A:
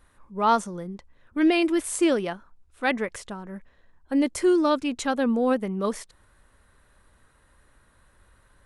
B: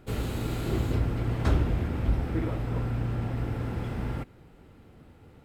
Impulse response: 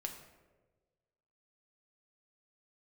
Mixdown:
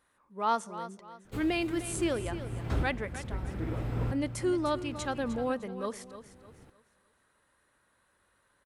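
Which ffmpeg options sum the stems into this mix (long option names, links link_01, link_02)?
-filter_complex "[0:a]highpass=frequency=290:poles=1,volume=-8dB,asplit=4[link_01][link_02][link_03][link_04];[link_02]volume=-16.5dB[link_05];[link_03]volume=-11.5dB[link_06];[1:a]adelay=1250,volume=-3dB,asplit=2[link_07][link_08];[link_08]volume=-14dB[link_09];[link_04]apad=whole_len=295346[link_10];[link_07][link_10]sidechaincompress=threshold=-45dB:ratio=8:attack=8.7:release=715[link_11];[2:a]atrim=start_sample=2205[link_12];[link_05][link_09]amix=inputs=2:normalize=0[link_13];[link_13][link_12]afir=irnorm=-1:irlink=0[link_14];[link_06]aecho=0:1:304|608|912|1216|1520:1|0.33|0.109|0.0359|0.0119[link_15];[link_01][link_11][link_14][link_15]amix=inputs=4:normalize=0"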